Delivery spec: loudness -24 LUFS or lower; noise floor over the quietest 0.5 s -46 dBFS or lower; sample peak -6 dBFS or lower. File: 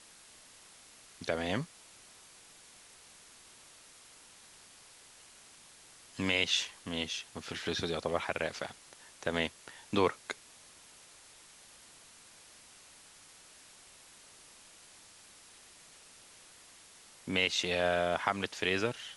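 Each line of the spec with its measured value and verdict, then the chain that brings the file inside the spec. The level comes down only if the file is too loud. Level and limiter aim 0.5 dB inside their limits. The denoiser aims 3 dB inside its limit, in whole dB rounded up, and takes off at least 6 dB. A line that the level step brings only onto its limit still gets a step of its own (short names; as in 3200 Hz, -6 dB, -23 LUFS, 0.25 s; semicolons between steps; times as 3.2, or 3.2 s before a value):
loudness -33.5 LUFS: OK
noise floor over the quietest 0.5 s -57 dBFS: OK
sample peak -11.0 dBFS: OK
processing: none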